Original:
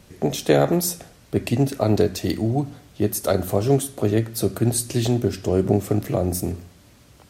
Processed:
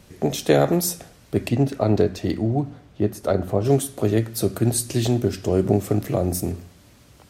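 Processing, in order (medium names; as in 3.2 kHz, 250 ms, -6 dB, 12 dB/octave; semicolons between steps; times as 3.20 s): 1.47–3.64 s: low-pass 3.4 kHz -> 1.4 kHz 6 dB/octave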